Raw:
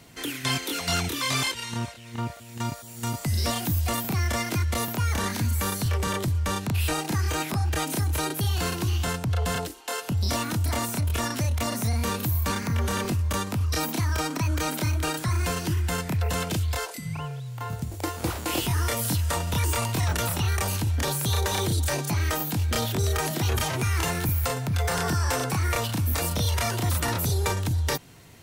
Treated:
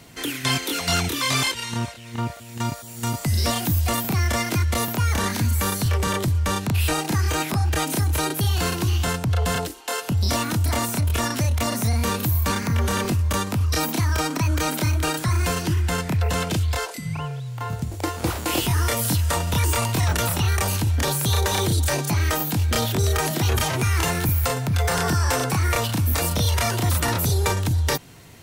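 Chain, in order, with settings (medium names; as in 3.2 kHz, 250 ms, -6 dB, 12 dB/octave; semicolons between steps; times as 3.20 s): 15.62–18.27 s: treble shelf 11 kHz -6.5 dB; trim +4 dB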